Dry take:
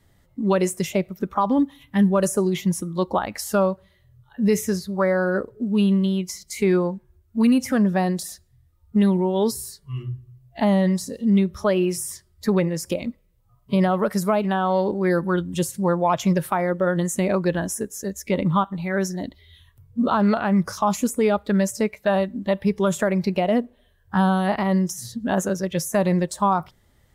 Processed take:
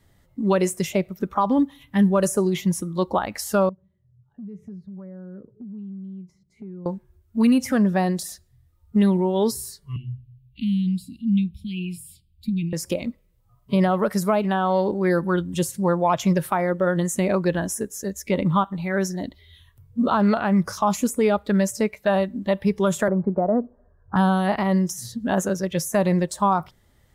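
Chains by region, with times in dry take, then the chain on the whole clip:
3.69–6.86 band-pass 170 Hz, Q 1.7 + compressor 5:1, threshold -36 dBFS
9.96–12.73 Chebyshev band-stop 330–2400 Hz, order 5 + high shelf 6700 Hz -10.5 dB + fixed phaser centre 1700 Hz, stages 6
23.08–24.16 elliptic low-pass 1400 Hz, stop band 50 dB + three-band squash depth 40%
whole clip: dry

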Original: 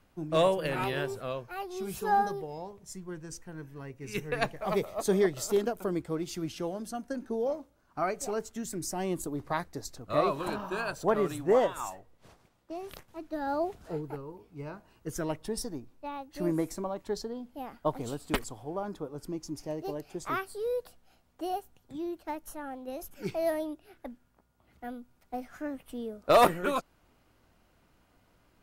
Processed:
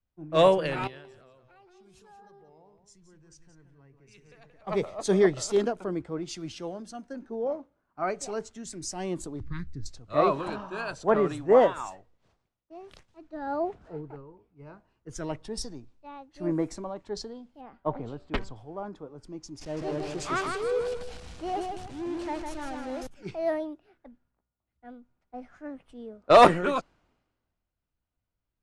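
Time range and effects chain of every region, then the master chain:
0.87–4.67 compressor 5:1, threshold -44 dBFS + echo 0.178 s -7 dB
9.4–9.86 Butterworth band-stop 680 Hz, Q 0.52 + tilt -2.5 dB/oct
17.61–18.56 air absorption 140 m + de-hum 193.4 Hz, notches 8
19.61–23.07 zero-crossing step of -37 dBFS + feedback echo 0.156 s, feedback 41%, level -3.5 dB
whole clip: Bessel low-pass 6000 Hz, order 8; transient shaper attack -2 dB, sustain +2 dB; three-band expander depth 70%

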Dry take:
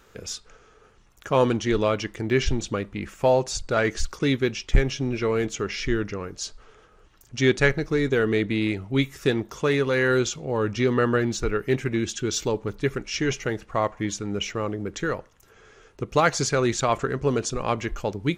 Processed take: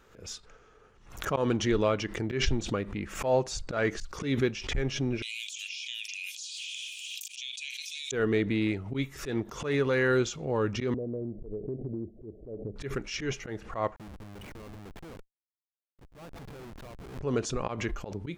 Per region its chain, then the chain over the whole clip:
5.22–8.12 rippled Chebyshev high-pass 2400 Hz, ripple 6 dB + fast leveller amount 100%
10.94–12.76 steep low-pass 710 Hz 96 dB/oct + compressor 4:1, threshold -29 dBFS
13.96–17.21 air absorption 320 m + compressor 12:1, threshold -34 dBFS + Schmitt trigger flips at -40 dBFS
whole clip: high shelf 3400 Hz -5.5 dB; auto swell 0.12 s; backwards sustainer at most 100 dB/s; gain -3.5 dB

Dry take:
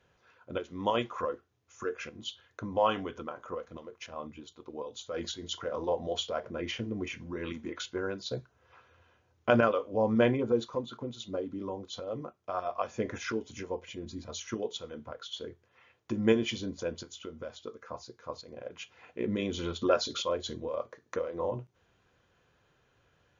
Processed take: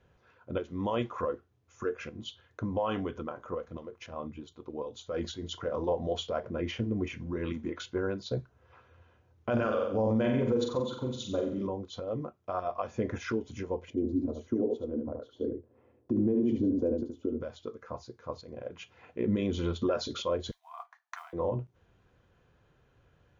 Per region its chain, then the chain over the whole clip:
9.52–11.67 high shelf 4200 Hz +11.5 dB + flutter echo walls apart 7.8 m, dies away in 0.55 s
13.9–17.41 block floating point 7-bit + EQ curve 110 Hz 0 dB, 170 Hz -6 dB, 250 Hz +12 dB, 600 Hz +2 dB, 1400 Hz -13 dB, 2900 Hz -19 dB + echo 74 ms -5.5 dB
20.51–21.33 modulation noise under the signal 34 dB + brick-wall FIR high-pass 660 Hz + three-band expander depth 70%
whole clip: tilt -2 dB/oct; limiter -20 dBFS

